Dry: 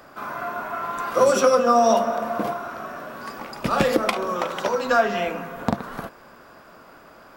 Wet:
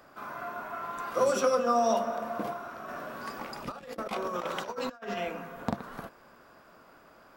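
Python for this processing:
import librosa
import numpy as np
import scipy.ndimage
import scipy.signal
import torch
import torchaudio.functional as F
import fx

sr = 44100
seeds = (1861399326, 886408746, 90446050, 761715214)

y = fx.over_compress(x, sr, threshold_db=-27.0, ratio=-0.5, at=(2.88, 5.17))
y = y * librosa.db_to_amplitude(-8.5)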